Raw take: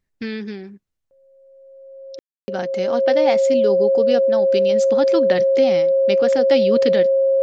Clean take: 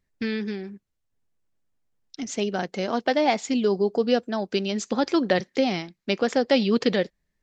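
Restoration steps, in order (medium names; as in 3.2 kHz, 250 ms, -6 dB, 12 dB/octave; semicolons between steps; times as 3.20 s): band-stop 540 Hz, Q 30; room tone fill 2.19–2.48 s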